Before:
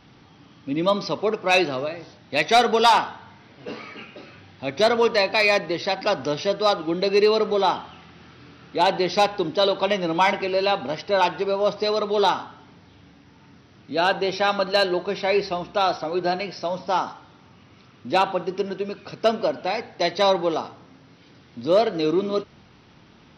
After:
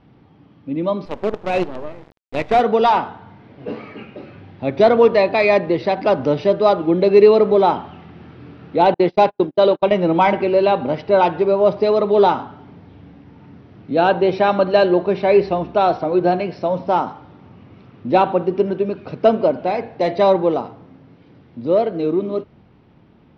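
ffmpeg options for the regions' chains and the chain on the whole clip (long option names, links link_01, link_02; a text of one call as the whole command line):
ffmpeg -i in.wav -filter_complex "[0:a]asettb=1/sr,asplit=3[link_01][link_02][link_03];[link_01]atrim=end=1.054[link_04];[link_02]atrim=start=1.05:end=2.61,asetpts=PTS-STARTPTS,afade=type=in:duration=0.004:curve=qsin,afade=type=out:start_time=1.556:duration=0.004:curve=qsin,lowpass=frequency=3000:poles=1,acrusher=bits=4:dc=4:mix=0:aa=0.000001[link_05];[link_03]atrim=start=2.606[link_06];[link_04][link_05]acrossfade=duration=0.004:curve1=hsin:curve2=qsin[link_07];[link_07][link_06]acrossfade=duration=0.004:curve1=qsin:curve2=hsin,asettb=1/sr,asplit=3[link_08][link_09][link_10];[link_08]atrim=end=8.944[link_11];[link_09]atrim=start=8.94:end=9.92,asetpts=PTS-STARTPTS,afade=type=in:duration=0.004:curve=qsin,afade=type=out:start_time=0.976:duration=0.004:curve=qsin,highpass=frequency=130:poles=1,agate=range=-45dB:threshold=-27dB:ratio=16:release=100:detection=peak[link_12];[link_10]atrim=start=9.916[link_13];[link_11][link_12]acrossfade=duration=0.004:curve1=hsin:curve2=qsin[link_14];[link_14][link_13]acrossfade=duration=0.004:curve1=qsin:curve2=hsin,asettb=1/sr,asplit=3[link_15][link_16][link_17];[link_15]atrim=end=19.574[link_18];[link_16]atrim=start=19.57:end=20.19,asetpts=PTS-STARTPTS,afade=type=in:duration=0.004:curve=qsin,afade=type=out:start_time=0.616:duration=0.004:curve=qsin,asoftclip=type=hard:threshold=-15.5dB,bandreject=frequency=114.2:width_type=h:width=4,bandreject=frequency=228.4:width_type=h:width=4,bandreject=frequency=342.6:width_type=h:width=4,bandreject=frequency=456.8:width_type=h:width=4,bandreject=frequency=571:width_type=h:width=4,bandreject=frequency=685.2:width_type=h:width=4,bandreject=frequency=799.4:width_type=h:width=4,bandreject=frequency=913.6:width_type=h:width=4,bandreject=frequency=1027.8:width_type=h:width=4,bandreject=frequency=1142:width_type=h:width=4,bandreject=frequency=1256.2:width_type=h:width=4,bandreject=frequency=1370.4:width_type=h:width=4,bandreject=frequency=1484.6:width_type=h:width=4,bandreject=frequency=1598.8:width_type=h:width=4,bandreject=frequency=1713:width_type=h:width=4,bandreject=frequency=1827.2:width_type=h:width=4,bandreject=frequency=1941.4:width_type=h:width=4,bandreject=frequency=2055.6:width_type=h:width=4,bandreject=frequency=2169.8:width_type=h:width=4,bandreject=frequency=2284:width_type=h:width=4,bandreject=frequency=2398.2:width_type=h:width=4,bandreject=frequency=2512.4:width_type=h:width=4,bandreject=frequency=2626.6:width_type=h:width=4,bandreject=frequency=2740.8:width_type=h:width=4,bandreject=frequency=2855:width_type=h:width=4,bandreject=frequency=2969.2:width_type=h:width=4,bandreject=frequency=3083.4:width_type=h:width=4,bandreject=frequency=3197.6:width_type=h:width=4,bandreject=frequency=3311.8:width_type=h:width=4[link_19];[link_17]atrim=start=20.186[link_20];[link_18][link_19]acrossfade=duration=0.004:curve1=hsin:curve2=qsin[link_21];[link_21][link_20]acrossfade=duration=0.004:curve1=qsin:curve2=hsin,lowpass=1800,dynaudnorm=framelen=450:gausssize=13:maxgain=9.5dB,equalizer=frequency=1400:width=0.86:gain=-7.5,volume=2.5dB" out.wav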